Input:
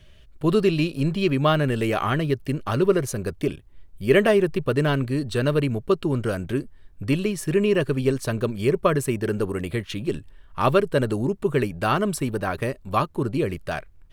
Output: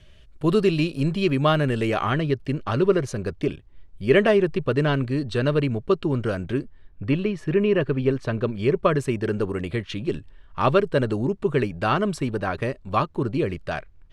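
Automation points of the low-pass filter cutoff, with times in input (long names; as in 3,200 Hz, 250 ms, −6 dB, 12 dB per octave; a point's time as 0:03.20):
0:01.49 10,000 Hz
0:02.26 5,500 Hz
0:06.54 5,500 Hz
0:07.04 2,900 Hz
0:08.18 2,900 Hz
0:09.03 5,700 Hz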